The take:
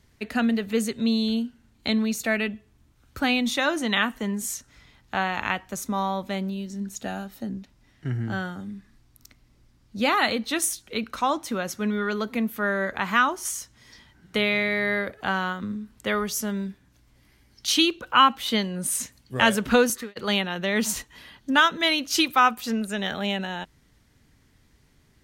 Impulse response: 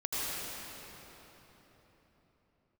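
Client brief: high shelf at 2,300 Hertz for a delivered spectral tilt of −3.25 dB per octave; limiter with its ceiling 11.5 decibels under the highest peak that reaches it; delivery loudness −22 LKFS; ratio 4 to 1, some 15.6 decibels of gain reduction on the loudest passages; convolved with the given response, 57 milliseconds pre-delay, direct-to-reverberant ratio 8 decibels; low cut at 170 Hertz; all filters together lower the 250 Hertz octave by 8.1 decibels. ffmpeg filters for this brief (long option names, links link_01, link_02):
-filter_complex "[0:a]highpass=170,equalizer=frequency=250:width_type=o:gain=-8.5,highshelf=frequency=2300:gain=3.5,acompressor=threshold=-31dB:ratio=4,alimiter=limit=-24dB:level=0:latency=1,asplit=2[link_01][link_02];[1:a]atrim=start_sample=2205,adelay=57[link_03];[link_02][link_03]afir=irnorm=-1:irlink=0,volume=-15.5dB[link_04];[link_01][link_04]amix=inputs=2:normalize=0,volume=13.5dB"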